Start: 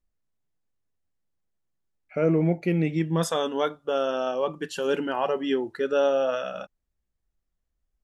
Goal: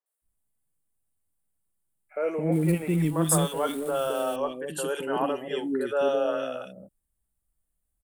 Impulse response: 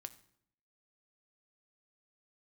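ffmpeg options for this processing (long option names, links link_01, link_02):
-filter_complex "[0:a]asettb=1/sr,asplit=3[link_01][link_02][link_03];[link_01]atrim=end=2.464[link_04];[link_02]atrim=start=2.46:end=4.3,asetpts=PTS-STARTPTS,afade=type=in:duration=0.004:curve=qsin,afade=type=out:start_time=1.836:duration=0.004:curve=qsin,aeval=exprs='val(0)+0.5*0.0119*sgn(val(0))':channel_layout=same[link_05];[link_03]atrim=start=4.296[link_06];[link_04][link_05]acrossfade=duration=0.004:curve1=hsin:curve2=qsin[link_07];[link_07][link_06]acrossfade=duration=0.004:curve1=qsin:curve2=hsin,highshelf=frequency=7300:width_type=q:width=3:gain=9,acrossover=split=430|2000[link_08][link_09][link_10];[link_10]adelay=60[link_11];[link_08]adelay=220[link_12];[link_12][link_09][link_11]amix=inputs=3:normalize=0"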